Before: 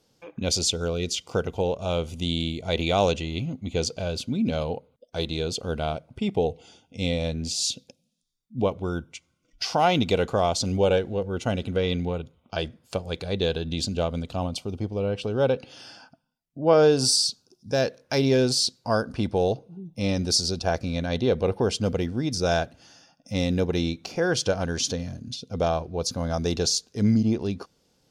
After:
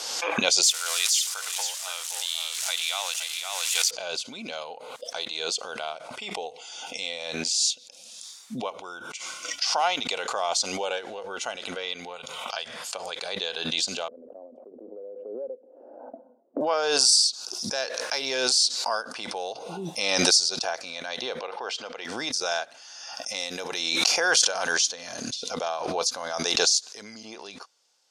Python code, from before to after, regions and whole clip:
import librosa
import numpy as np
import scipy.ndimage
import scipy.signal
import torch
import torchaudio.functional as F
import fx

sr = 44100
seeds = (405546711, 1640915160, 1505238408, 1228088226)

y = fx.chain(x, sr, fx.crossing_spikes(level_db=-21.5),
    fx.highpass(hz=1200.0, slope=12),
    fx.echo_single(ms=518, db=-6.5), at=(0.63, 3.91))
y = fx.chain(y, sr, fx.peak_eq(hz=320.0, db=-10.5, octaves=0.57),
    fx.band_squash(depth_pct=40), at=(12.16, 12.95))
y = fx.chain(y, sr, fx.ellip_bandpass(low_hz=230.0, high_hz=560.0, order=3, stop_db=80),
    fx.band_squash(depth_pct=40), at=(14.08, 16.61))
y = fx.chain(y, sr, fx.bandpass_edges(low_hz=130.0, high_hz=3900.0),
    fx.low_shelf(hz=240.0, db=-10.5), at=(21.39, 22.05))
y = fx.chain(y, sr, fx.high_shelf(hz=7800.0, db=8.5),
    fx.pre_swell(db_per_s=23.0), at=(23.34, 24.72))
y = scipy.signal.sosfilt(scipy.signal.cheby1(2, 1.0, [890.0, 8000.0], 'bandpass', fs=sr, output='sos'), y)
y = fx.high_shelf(y, sr, hz=4800.0, db=7.0)
y = fx.pre_swell(y, sr, db_per_s=30.0)
y = y * 10.0 ** (-1.0 / 20.0)